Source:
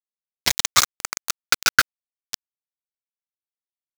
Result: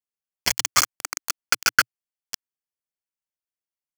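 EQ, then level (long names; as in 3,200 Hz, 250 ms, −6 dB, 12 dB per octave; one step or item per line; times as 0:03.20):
dynamic equaliser 300 Hz, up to −3 dB, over −51 dBFS, Q 5.2
Butterworth band-reject 3,800 Hz, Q 5
dynamic equaliser 120 Hz, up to −6 dB, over −55 dBFS, Q 4.6
−1.5 dB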